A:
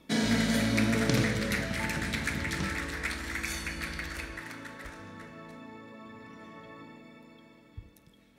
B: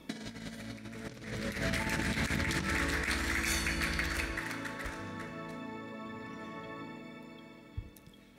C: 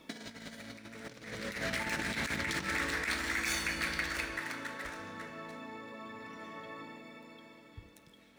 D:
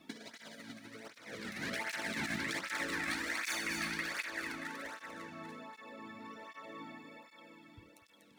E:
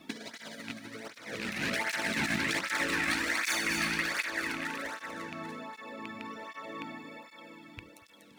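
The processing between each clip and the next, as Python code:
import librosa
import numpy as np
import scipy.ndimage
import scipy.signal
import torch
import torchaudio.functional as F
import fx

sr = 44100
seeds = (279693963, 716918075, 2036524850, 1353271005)

y1 = fx.over_compress(x, sr, threshold_db=-34.0, ratio=-0.5)
y2 = scipy.ndimage.median_filter(y1, 3, mode='constant')
y2 = fx.low_shelf(y2, sr, hz=220.0, db=-11.0)
y3 = y2 + 10.0 ** (-5.5 / 20.0) * np.pad(y2, (int(242 * sr / 1000.0), 0))[:len(y2)]
y3 = fx.flanger_cancel(y3, sr, hz=1.3, depth_ms=2.2)
y3 = F.gain(torch.from_numpy(y3), -1.0).numpy()
y4 = fx.rattle_buzz(y3, sr, strikes_db=-49.0, level_db=-32.0)
y4 = F.gain(torch.from_numpy(y4), 6.5).numpy()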